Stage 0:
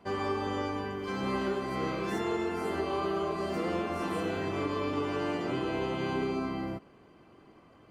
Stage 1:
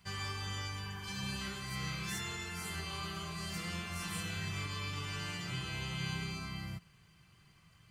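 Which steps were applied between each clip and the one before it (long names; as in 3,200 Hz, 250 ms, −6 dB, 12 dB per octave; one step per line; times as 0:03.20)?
healed spectral selection 0:00.87–0:01.39, 720–2,300 Hz before
drawn EQ curve 170 Hz 0 dB, 250 Hz −22 dB, 590 Hz −21 dB, 1,800 Hz −3 dB, 7,400 Hz +8 dB
level +1 dB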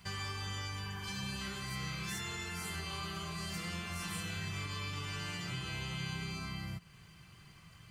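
downward compressor 2 to 1, threshold −49 dBFS, peak gain reduction 8.5 dB
level +6.5 dB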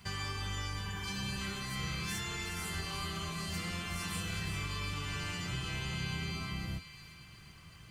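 sub-octave generator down 1 octave, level −5 dB
on a send: delay with a high-pass on its return 366 ms, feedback 49%, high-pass 1,800 Hz, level −8.5 dB
on the sum: level +1.5 dB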